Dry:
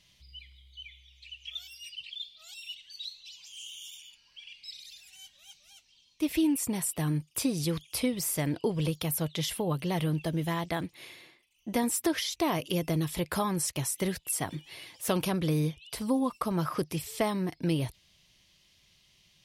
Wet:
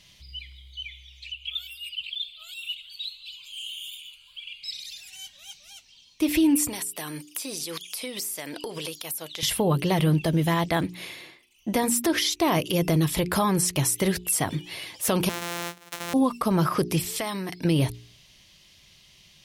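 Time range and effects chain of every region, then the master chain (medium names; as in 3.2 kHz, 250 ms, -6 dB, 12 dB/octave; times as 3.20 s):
1.32–4.63 s: peaking EQ 400 Hz -12 dB 1 oct + static phaser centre 1.2 kHz, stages 8 + modulated delay 213 ms, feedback 73%, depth 204 cents, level -20 dB
6.68–9.43 s: high-pass 380 Hz + treble shelf 2.4 kHz +9.5 dB + compression 10:1, threshold -38 dBFS
15.29–16.14 s: sorted samples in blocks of 256 samples + high-pass 1.2 kHz 6 dB/octave + band-stop 4.7 kHz, Q 14
17.16–17.65 s: tilt shelf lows -5.5 dB, about 850 Hz + compression 4:1, threshold -36 dBFS
whole clip: de-hum 59.5 Hz, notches 7; peak limiter -22.5 dBFS; trim +9 dB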